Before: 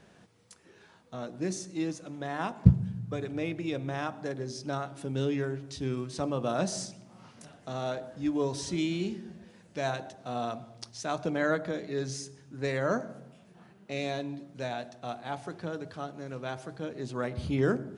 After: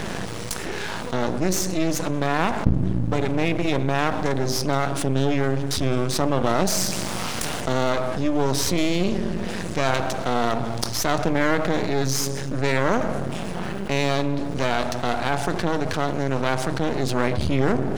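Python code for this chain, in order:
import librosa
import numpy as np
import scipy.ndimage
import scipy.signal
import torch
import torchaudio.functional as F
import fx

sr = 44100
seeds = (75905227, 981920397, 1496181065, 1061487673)

y = fx.spec_flatten(x, sr, power=0.6, at=(6.9, 7.6), fade=0.02)
y = fx.peak_eq(y, sr, hz=73.0, db=4.0, octaves=0.26)
y = np.maximum(y, 0.0)
y = fx.env_flatten(y, sr, amount_pct=70)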